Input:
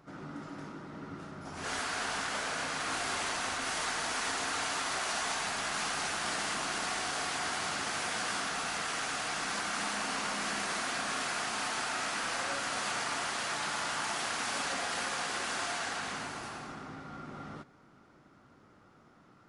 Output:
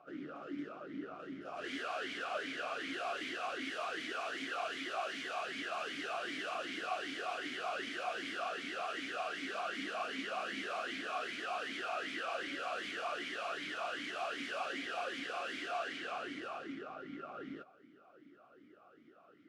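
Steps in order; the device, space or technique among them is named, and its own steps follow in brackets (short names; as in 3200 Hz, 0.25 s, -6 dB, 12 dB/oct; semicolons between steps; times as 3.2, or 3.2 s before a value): talk box (tube stage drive 37 dB, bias 0.65; vowel sweep a-i 2.6 Hz); gain +13.5 dB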